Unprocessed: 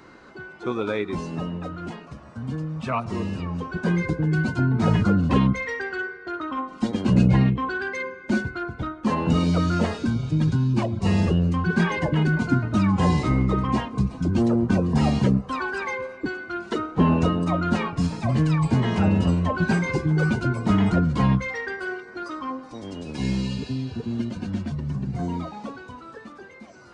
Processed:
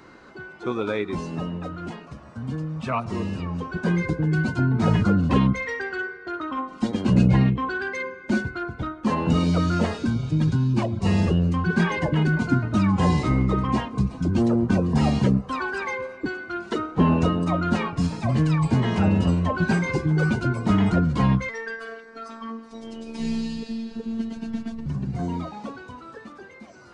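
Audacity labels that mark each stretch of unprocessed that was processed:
21.490000	24.860000	phases set to zero 226 Hz

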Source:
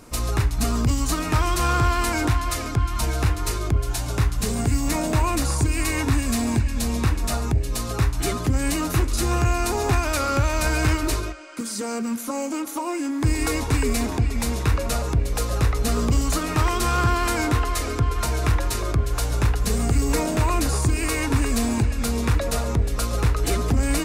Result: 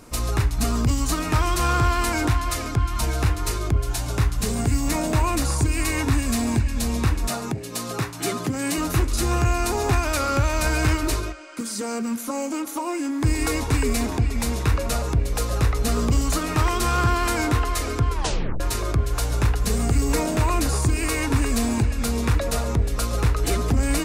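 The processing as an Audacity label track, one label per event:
7.280000	8.780000	high-pass filter 130 Hz 24 dB per octave
18.120000	18.120000	tape stop 0.48 s

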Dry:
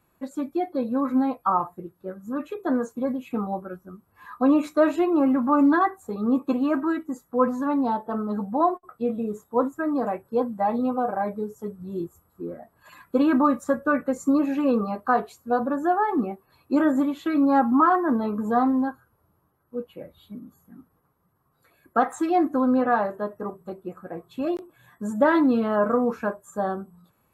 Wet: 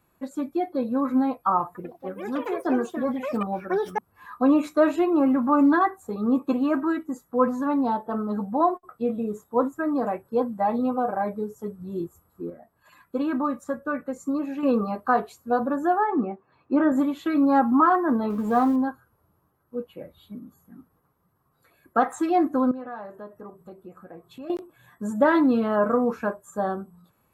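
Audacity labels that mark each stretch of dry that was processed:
1.650000	4.810000	delay with pitch and tempo change per echo 99 ms, each echo +6 semitones, echoes 2, each echo −6 dB
12.500000	14.630000	clip gain −6 dB
16.040000	16.920000	band-pass filter 120–2,300 Hz
18.300000	18.760000	mu-law and A-law mismatch coded by mu
22.710000	24.500000	downward compressor 2 to 1, threshold −45 dBFS

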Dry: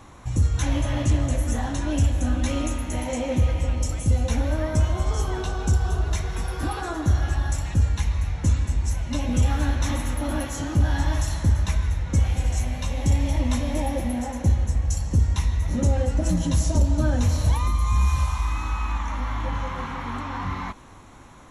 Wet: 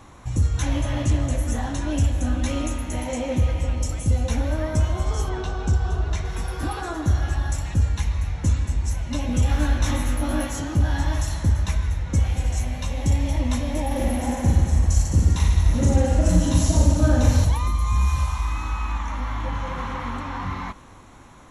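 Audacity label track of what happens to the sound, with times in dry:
5.290000	6.250000	high-frequency loss of the air 63 metres
9.470000	10.600000	double-tracking delay 20 ms −3 dB
13.870000	17.450000	reverse bouncing-ball delay first gap 40 ms, each gap 1.2×, echoes 6, each echo −2 dB
19.410000	19.850000	delay throw 240 ms, feedback 50%, level −6 dB

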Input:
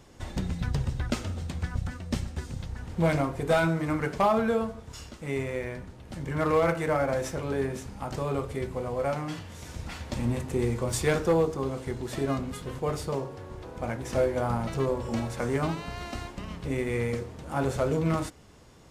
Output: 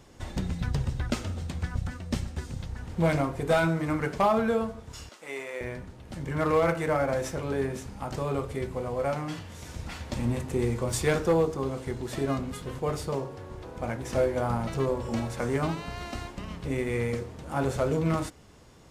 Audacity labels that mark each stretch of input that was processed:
5.090000	5.610000	high-pass filter 550 Hz

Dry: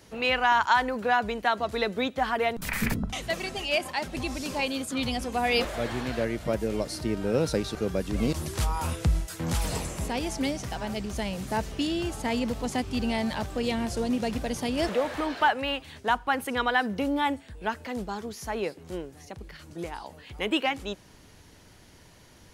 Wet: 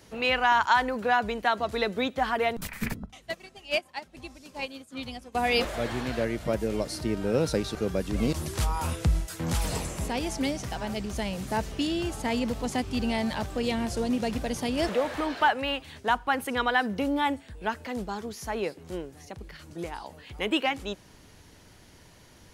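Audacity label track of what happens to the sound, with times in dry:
2.670000	5.350000	expander for the loud parts 2.5 to 1, over −36 dBFS

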